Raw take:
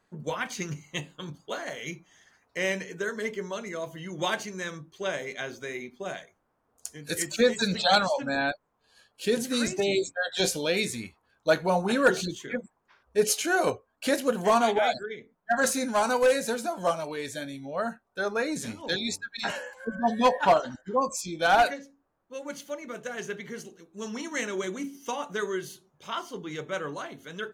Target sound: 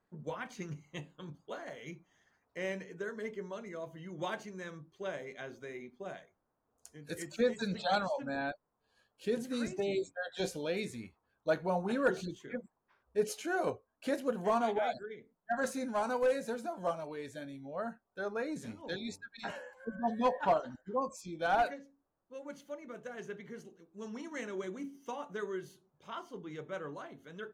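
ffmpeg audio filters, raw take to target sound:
-af "highshelf=f=2100:g=-10.5,volume=0.447"

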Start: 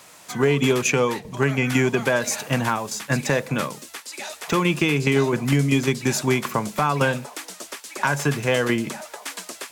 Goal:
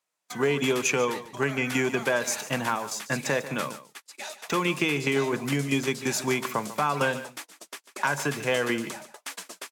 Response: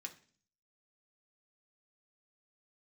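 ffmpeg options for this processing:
-af "agate=range=0.0251:threshold=0.02:ratio=16:detection=peak,highpass=f=270:p=1,aecho=1:1:145:0.188,volume=0.668"

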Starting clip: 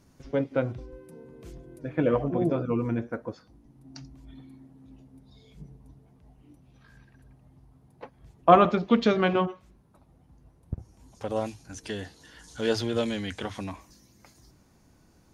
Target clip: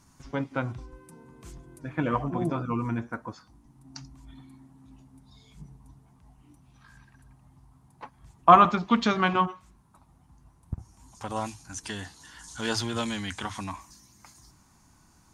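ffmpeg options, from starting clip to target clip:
-af "equalizer=f=500:t=o:w=1:g=-11,equalizer=f=1000:t=o:w=1:g=9,equalizer=f=8000:t=o:w=1:g=9"

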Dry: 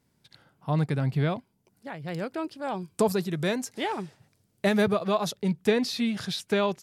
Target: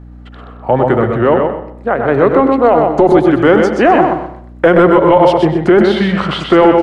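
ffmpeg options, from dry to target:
-filter_complex "[0:a]aemphasis=mode=reproduction:type=75kf,acompressor=threshold=0.0398:ratio=3,asetrate=37084,aresample=44100,atempo=1.18921,acrossover=split=270 2000:gain=0.1 1 0.2[s0][s1][s2];[s0][s1][s2]amix=inputs=3:normalize=0,asplit=2[s3][s4];[s4]aecho=0:1:126|252|378:0.562|0.141|0.0351[s5];[s3][s5]amix=inputs=2:normalize=0,aeval=exprs='val(0)+0.00112*(sin(2*PI*60*n/s)+sin(2*PI*2*60*n/s)/2+sin(2*PI*3*60*n/s)/3+sin(2*PI*4*60*n/s)/4+sin(2*PI*5*60*n/s)/5)':c=same,asplit=2[s6][s7];[s7]adelay=96,lowpass=f=2700:p=1,volume=0.316,asplit=2[s8][s9];[s9]adelay=96,lowpass=f=2700:p=1,volume=0.33,asplit=2[s10][s11];[s11]adelay=96,lowpass=f=2700:p=1,volume=0.33,asplit=2[s12][s13];[s13]adelay=96,lowpass=f=2700:p=1,volume=0.33[s14];[s8][s10][s12][s14]amix=inputs=4:normalize=0[s15];[s6][s15]amix=inputs=2:normalize=0,apsyclip=25.1,volume=0.841"

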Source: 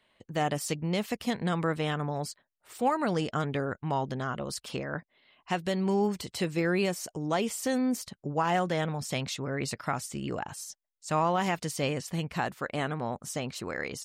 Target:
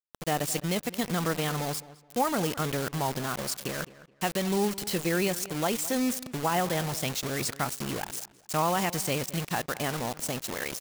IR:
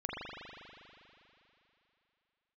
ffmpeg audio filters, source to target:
-filter_complex "[0:a]acrusher=bits=5:mix=0:aa=0.000001,atempo=1.3,highshelf=f=4800:g=6.5,asplit=2[s0][s1];[s1]adelay=212,lowpass=f=3100:p=1,volume=0.141,asplit=2[s2][s3];[s3]adelay=212,lowpass=f=3100:p=1,volume=0.27,asplit=2[s4][s5];[s5]adelay=212,lowpass=f=3100:p=1,volume=0.27[s6];[s0][s2][s4][s6]amix=inputs=4:normalize=0"

